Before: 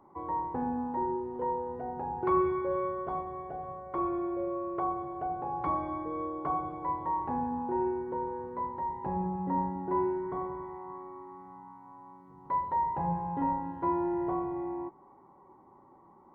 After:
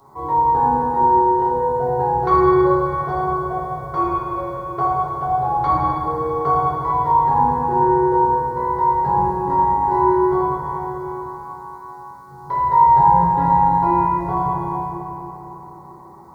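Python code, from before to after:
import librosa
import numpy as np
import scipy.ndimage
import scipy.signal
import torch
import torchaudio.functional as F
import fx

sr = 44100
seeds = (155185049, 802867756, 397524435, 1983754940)

y = fx.curve_eq(x, sr, hz=(140.0, 210.0, 370.0, 1500.0, 2600.0, 4100.0), db=(0, -8, -4, 0, -5, 13))
y = fx.rev_fdn(y, sr, rt60_s=3.6, lf_ratio=1.0, hf_ratio=0.5, size_ms=43.0, drr_db=-7.5)
y = F.gain(torch.from_numpy(y), 8.0).numpy()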